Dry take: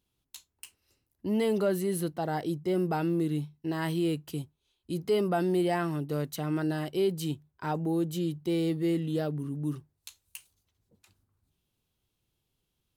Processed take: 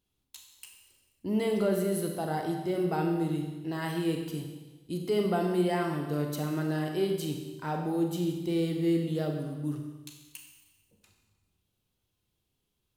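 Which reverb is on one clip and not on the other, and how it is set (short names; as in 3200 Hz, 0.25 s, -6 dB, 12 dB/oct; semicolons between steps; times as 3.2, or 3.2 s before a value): Schroeder reverb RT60 1.2 s, combs from 30 ms, DRR 2.5 dB; gain -2 dB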